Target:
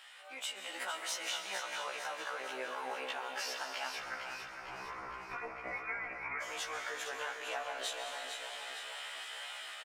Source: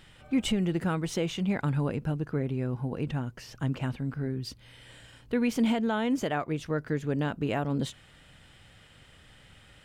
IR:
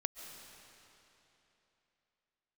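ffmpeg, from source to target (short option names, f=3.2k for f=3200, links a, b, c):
-filter_complex "[0:a]alimiter=level_in=2.5dB:limit=-24dB:level=0:latency=1,volume=-2.5dB,dynaudnorm=f=440:g=3:m=8.5dB,highpass=f=710:w=0.5412,highpass=f=710:w=1.3066,acompressor=threshold=-40dB:ratio=6,flanger=delay=7.7:depth=8:regen=76:speed=0.96:shape=triangular[a];[1:a]atrim=start_sample=2205[b];[a][b]afir=irnorm=-1:irlink=0,asettb=1/sr,asplit=3[c][d][e];[c]atrim=end=3.994[f];[d]atrim=start=3.99:end=6.42,asetpts=PTS-STARTPTS,afade=t=in:d=0.004:c=qsin,afade=t=out:st=2.426:d=0.004:c=qsin,lowpass=f=2.5k:t=q:w=0.5098,lowpass=f=2.5k:t=q:w=0.6013,lowpass=f=2.5k:t=q:w=0.9,lowpass=f=2.5k:t=q:w=2.563,afreqshift=-2900[g];[e]atrim=start=6.416[h];[f][g]acrossfade=d=0.004:c1=hsin:c2=qsin[i];[i][h]acrossfade=d=0.004:c1=qsin:c2=hsin,aecho=1:1:456|912|1368|1824|2280|2736|3192:0.422|0.232|0.128|0.0702|0.0386|0.0212|0.0117,afftfilt=real='re*1.73*eq(mod(b,3),0)':imag='im*1.73*eq(mod(b,3),0)':win_size=2048:overlap=0.75,volume=11dB"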